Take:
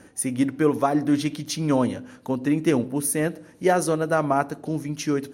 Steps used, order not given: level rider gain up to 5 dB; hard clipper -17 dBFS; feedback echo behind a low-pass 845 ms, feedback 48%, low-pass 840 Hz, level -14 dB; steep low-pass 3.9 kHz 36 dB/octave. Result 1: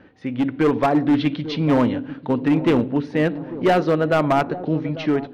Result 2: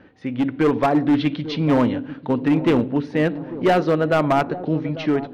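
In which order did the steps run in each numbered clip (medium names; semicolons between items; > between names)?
steep low-pass > hard clipper > feedback echo behind a low-pass > level rider; steep low-pass > hard clipper > level rider > feedback echo behind a low-pass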